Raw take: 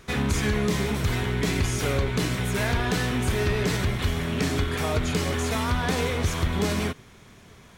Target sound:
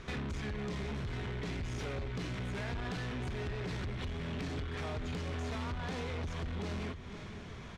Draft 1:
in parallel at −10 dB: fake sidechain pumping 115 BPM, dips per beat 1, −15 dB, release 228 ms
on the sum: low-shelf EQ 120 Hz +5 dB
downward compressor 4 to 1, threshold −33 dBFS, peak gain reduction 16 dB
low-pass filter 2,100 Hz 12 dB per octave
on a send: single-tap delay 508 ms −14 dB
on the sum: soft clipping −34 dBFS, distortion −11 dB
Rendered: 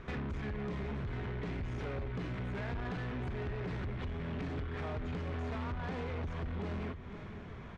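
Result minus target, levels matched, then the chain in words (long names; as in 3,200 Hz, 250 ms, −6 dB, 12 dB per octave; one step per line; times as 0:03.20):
4,000 Hz band −7.0 dB
in parallel at −10 dB: fake sidechain pumping 115 BPM, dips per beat 1, −15 dB, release 228 ms
on the sum: low-shelf EQ 120 Hz +5 dB
downward compressor 4 to 1, threshold −33 dBFS, peak gain reduction 16 dB
low-pass filter 4,800 Hz 12 dB per octave
on a send: single-tap delay 508 ms −14 dB
on the sum: soft clipping −34 dBFS, distortion −11 dB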